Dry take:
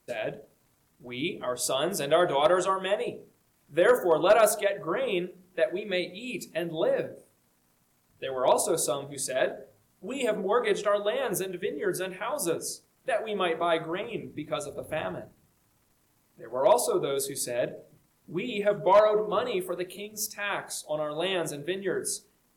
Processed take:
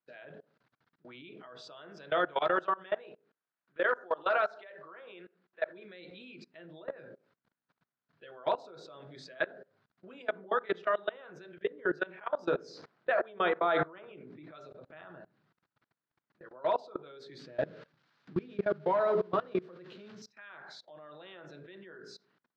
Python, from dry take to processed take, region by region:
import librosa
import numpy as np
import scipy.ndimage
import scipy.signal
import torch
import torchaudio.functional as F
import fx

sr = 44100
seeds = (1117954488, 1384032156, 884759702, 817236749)

y = fx.chain(x, sr, fx.highpass(hz=560.0, slope=6),
    fx.high_shelf(hz=5600.0, db=-10.0),
    fx.quant_companded(bits=8), at=(3.04, 5.66))
y = fx.chain(y, sr, fx.peak_eq(hz=590.0, db=5.5, octaves=2.6),
    fx.sustainer(db_per_s=80.0), at=(11.64, 14.51))
y = fx.chain(y, sr, fx.crossing_spikes(level_db=-25.5),
    fx.tilt_eq(slope=-3.5), at=(17.39, 20.22))
y = scipy.signal.sosfilt(scipy.signal.ellip(3, 1.0, 40, [130.0, 4300.0], 'bandpass', fs=sr, output='sos'), y)
y = fx.peak_eq(y, sr, hz=1500.0, db=10.0, octaves=0.68)
y = fx.level_steps(y, sr, step_db=23)
y = y * 10.0 ** (-4.0 / 20.0)